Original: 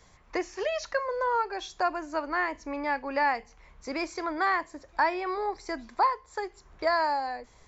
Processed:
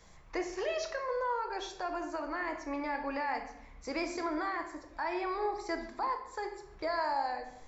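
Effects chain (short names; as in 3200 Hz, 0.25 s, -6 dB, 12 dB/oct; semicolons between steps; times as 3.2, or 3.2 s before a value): limiter -24 dBFS, peak gain reduction 9 dB; shoebox room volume 280 m³, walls mixed, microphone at 0.7 m; vocal rider within 4 dB 2 s; gain -4 dB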